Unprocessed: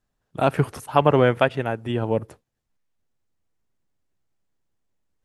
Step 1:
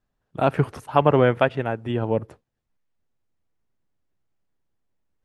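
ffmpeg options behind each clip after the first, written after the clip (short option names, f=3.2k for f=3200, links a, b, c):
-af "lowpass=f=3.3k:p=1"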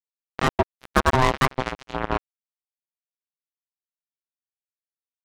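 -af "aecho=1:1:373:0.237,acrusher=bits=2:mix=0:aa=0.5,aeval=exprs='val(0)*sin(2*PI*520*n/s)':c=same,volume=1.5dB"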